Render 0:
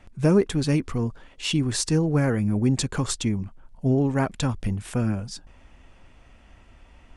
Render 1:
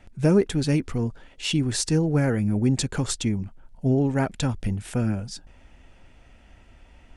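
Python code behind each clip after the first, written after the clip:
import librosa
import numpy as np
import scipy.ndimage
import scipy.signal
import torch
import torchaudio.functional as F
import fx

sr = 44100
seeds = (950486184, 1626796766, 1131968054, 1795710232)

y = fx.peak_eq(x, sr, hz=1100.0, db=-8.5, octaves=0.21)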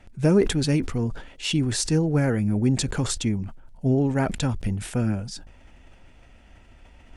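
y = fx.sustainer(x, sr, db_per_s=88.0)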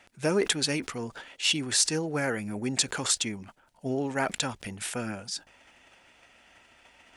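y = fx.highpass(x, sr, hz=1100.0, slope=6)
y = y * 10.0 ** (3.5 / 20.0)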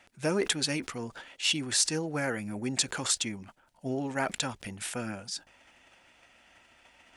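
y = fx.notch(x, sr, hz=430.0, q=12.0)
y = y * 10.0 ** (-2.0 / 20.0)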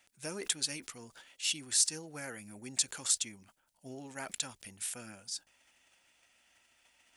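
y = librosa.effects.preemphasis(x, coef=0.8, zi=[0.0])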